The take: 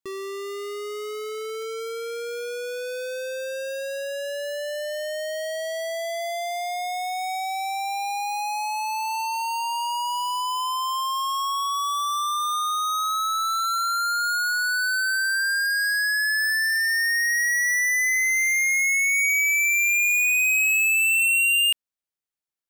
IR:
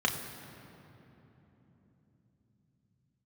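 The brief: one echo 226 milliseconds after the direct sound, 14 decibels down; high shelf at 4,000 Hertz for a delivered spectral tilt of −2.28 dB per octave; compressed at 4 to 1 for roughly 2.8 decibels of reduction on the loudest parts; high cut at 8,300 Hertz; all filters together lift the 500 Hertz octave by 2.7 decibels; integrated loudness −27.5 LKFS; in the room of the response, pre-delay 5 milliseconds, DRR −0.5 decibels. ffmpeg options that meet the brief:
-filter_complex "[0:a]lowpass=8300,equalizer=frequency=500:width_type=o:gain=3.5,highshelf=frequency=4000:gain=-8,acompressor=threshold=-26dB:ratio=4,aecho=1:1:226:0.2,asplit=2[link_01][link_02];[1:a]atrim=start_sample=2205,adelay=5[link_03];[link_02][link_03]afir=irnorm=-1:irlink=0,volume=-9.5dB[link_04];[link_01][link_04]amix=inputs=2:normalize=0,volume=-4.5dB"

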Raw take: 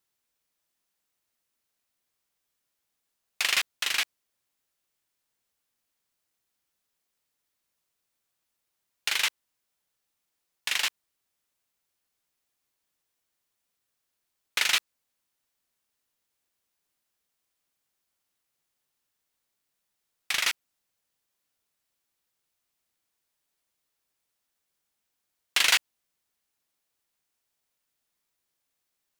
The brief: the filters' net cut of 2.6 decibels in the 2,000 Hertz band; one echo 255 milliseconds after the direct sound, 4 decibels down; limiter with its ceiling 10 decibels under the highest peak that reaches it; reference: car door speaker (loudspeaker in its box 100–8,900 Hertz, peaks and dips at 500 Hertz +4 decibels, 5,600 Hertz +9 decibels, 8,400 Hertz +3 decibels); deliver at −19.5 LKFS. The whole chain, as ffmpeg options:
ffmpeg -i in.wav -af "equalizer=frequency=2000:width_type=o:gain=-3.5,alimiter=limit=-18.5dB:level=0:latency=1,highpass=100,equalizer=frequency=500:width_type=q:width=4:gain=4,equalizer=frequency=5600:width_type=q:width=4:gain=9,equalizer=frequency=8400:width_type=q:width=4:gain=3,lowpass=frequency=8900:width=0.5412,lowpass=frequency=8900:width=1.3066,aecho=1:1:255:0.631,volume=11dB" out.wav

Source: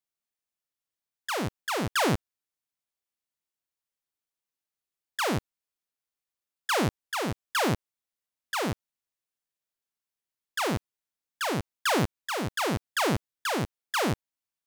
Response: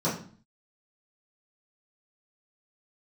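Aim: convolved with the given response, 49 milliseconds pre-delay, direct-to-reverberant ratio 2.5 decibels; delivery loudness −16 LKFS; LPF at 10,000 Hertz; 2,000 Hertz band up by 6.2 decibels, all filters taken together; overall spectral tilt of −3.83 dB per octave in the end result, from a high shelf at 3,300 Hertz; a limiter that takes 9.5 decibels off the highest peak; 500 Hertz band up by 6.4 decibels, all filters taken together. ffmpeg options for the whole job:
-filter_complex "[0:a]lowpass=10000,equalizer=frequency=500:width_type=o:gain=7.5,equalizer=frequency=2000:width_type=o:gain=8.5,highshelf=frequency=3300:gain=-3,alimiter=limit=-20dB:level=0:latency=1,asplit=2[link_01][link_02];[1:a]atrim=start_sample=2205,adelay=49[link_03];[link_02][link_03]afir=irnorm=-1:irlink=0,volume=-13.5dB[link_04];[link_01][link_04]amix=inputs=2:normalize=0,volume=11dB"

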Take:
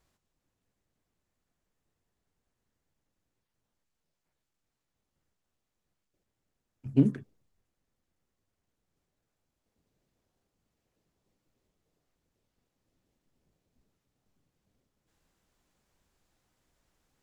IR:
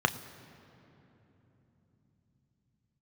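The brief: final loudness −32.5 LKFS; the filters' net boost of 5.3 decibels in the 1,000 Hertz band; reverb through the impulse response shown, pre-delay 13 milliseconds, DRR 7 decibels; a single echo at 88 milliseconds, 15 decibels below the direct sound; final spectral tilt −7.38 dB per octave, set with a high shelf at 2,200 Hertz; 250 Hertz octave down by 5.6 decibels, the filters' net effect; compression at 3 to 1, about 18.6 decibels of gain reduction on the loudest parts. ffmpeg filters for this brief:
-filter_complex "[0:a]equalizer=frequency=250:width_type=o:gain=-7,equalizer=frequency=1000:width_type=o:gain=6,highshelf=frequency=2200:gain=8.5,acompressor=threshold=-46dB:ratio=3,aecho=1:1:88:0.178,asplit=2[link_01][link_02];[1:a]atrim=start_sample=2205,adelay=13[link_03];[link_02][link_03]afir=irnorm=-1:irlink=0,volume=-18.5dB[link_04];[link_01][link_04]amix=inputs=2:normalize=0,volume=23dB"

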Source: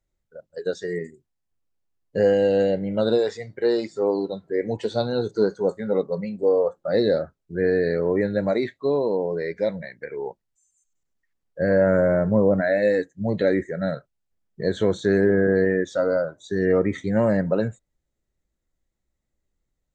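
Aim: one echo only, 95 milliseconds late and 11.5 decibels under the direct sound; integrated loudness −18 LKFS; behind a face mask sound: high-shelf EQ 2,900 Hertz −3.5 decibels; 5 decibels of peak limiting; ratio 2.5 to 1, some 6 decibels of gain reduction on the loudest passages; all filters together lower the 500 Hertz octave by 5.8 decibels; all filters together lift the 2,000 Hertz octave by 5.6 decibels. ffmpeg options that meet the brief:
ffmpeg -i in.wav -af "equalizer=frequency=500:width_type=o:gain=-7,equalizer=frequency=2000:width_type=o:gain=8.5,acompressor=threshold=-26dB:ratio=2.5,alimiter=limit=-19dB:level=0:latency=1,highshelf=frequency=2900:gain=-3.5,aecho=1:1:95:0.266,volume=13dB" out.wav

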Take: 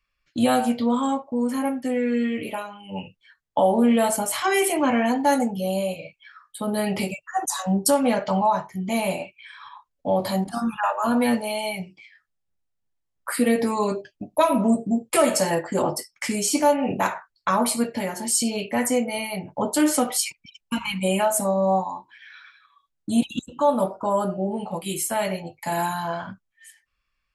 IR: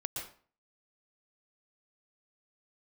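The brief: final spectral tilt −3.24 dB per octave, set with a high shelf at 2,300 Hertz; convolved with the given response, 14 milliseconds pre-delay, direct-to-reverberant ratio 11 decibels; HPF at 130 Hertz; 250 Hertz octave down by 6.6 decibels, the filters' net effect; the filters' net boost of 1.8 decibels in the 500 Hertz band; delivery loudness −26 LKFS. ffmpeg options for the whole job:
-filter_complex "[0:a]highpass=130,equalizer=frequency=250:width_type=o:gain=-8,equalizer=frequency=500:width_type=o:gain=3.5,highshelf=frequency=2300:gain=4,asplit=2[link_01][link_02];[1:a]atrim=start_sample=2205,adelay=14[link_03];[link_02][link_03]afir=irnorm=-1:irlink=0,volume=-12dB[link_04];[link_01][link_04]amix=inputs=2:normalize=0,volume=-3.5dB"

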